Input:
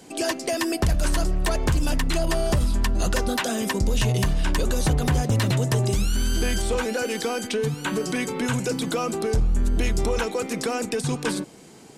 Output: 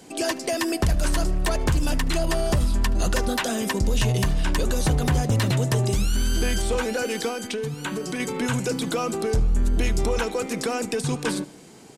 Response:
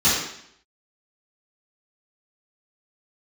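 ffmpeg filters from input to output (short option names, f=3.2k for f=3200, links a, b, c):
-filter_complex "[0:a]asettb=1/sr,asplit=3[a][b][c];[a]atrim=end=7.284[d];[b]atrim=start=7.28:end=8.2,asetpts=PTS-STARTPTS,afade=t=in:d=0.004:c=qsin,afade=t=out:st=0.916:d=0.004:c=qsin,acompressor=threshold=-27dB:ratio=3[e];[c]atrim=start=8.196[f];[d][e]acrossfade=d=0.004:c1=hsin:c2=qsin[g];[g][f]acrossfade=d=0.004:c1=qsin:c2=hsin,asplit=2[h][i];[i]aecho=0:1:75|150|225|300:0.0668|0.0388|0.0225|0.013[j];[h][j]amix=inputs=2:normalize=0"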